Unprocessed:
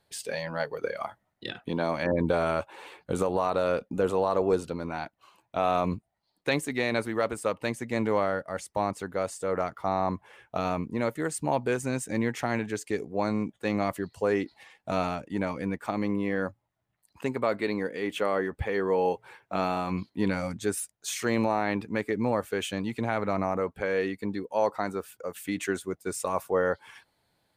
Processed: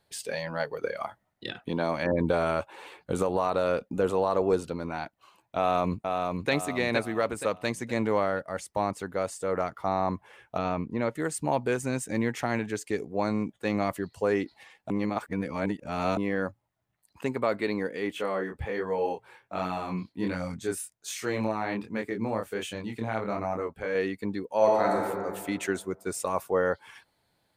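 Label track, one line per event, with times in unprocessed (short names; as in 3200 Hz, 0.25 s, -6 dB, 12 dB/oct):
5.570000	6.510000	echo throw 0.47 s, feedback 40%, level -4 dB
7.500000	7.940000	dynamic EQ 5600 Hz, up to +5 dB, over -51 dBFS, Q 0.95
10.580000	11.150000	air absorption 110 m
14.900000	16.170000	reverse
18.120000	23.950000	chorus 1.3 Hz
24.560000	24.990000	reverb throw, RT60 1.8 s, DRR -3 dB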